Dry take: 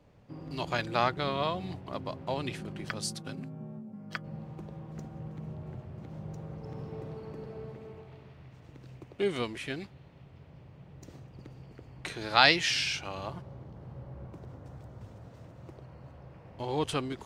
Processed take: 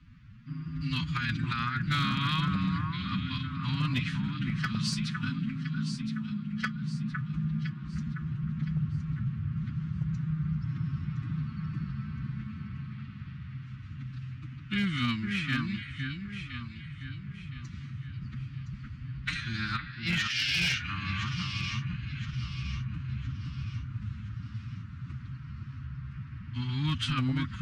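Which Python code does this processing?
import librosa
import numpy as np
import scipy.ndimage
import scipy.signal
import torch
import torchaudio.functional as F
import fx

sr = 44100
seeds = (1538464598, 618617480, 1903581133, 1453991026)

p1 = scipy.signal.sosfilt(scipy.signal.ellip(3, 1.0, 70, [240.0, 1300.0], 'bandstop', fs=sr, output='sos'), x)
p2 = fx.stretch_vocoder(p1, sr, factor=1.6)
p3 = scipy.signal.sosfilt(scipy.signal.butter(2, 3900.0, 'lowpass', fs=sr, output='sos'), p2)
p4 = fx.low_shelf(p3, sr, hz=81.0, db=5.0)
p5 = fx.over_compress(p4, sr, threshold_db=-35.0, ratio=-0.5)
p6 = p5 + fx.echo_alternate(p5, sr, ms=508, hz=1800.0, feedback_pct=61, wet_db=-4.5, dry=0)
p7 = fx.clip_asym(p6, sr, top_db=-29.5, bottom_db=-27.5)
y = F.gain(torch.from_numpy(p7), 7.0).numpy()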